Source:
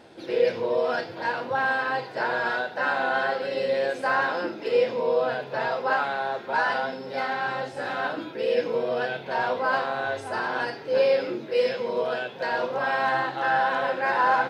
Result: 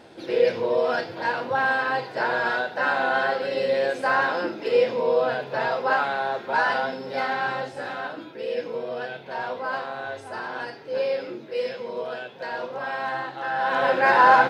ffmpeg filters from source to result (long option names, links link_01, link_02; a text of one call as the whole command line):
ffmpeg -i in.wav -af "volume=13dB,afade=type=out:start_time=7.44:duration=0.64:silence=0.473151,afade=type=in:start_time=13.56:duration=0.4:silence=0.281838" out.wav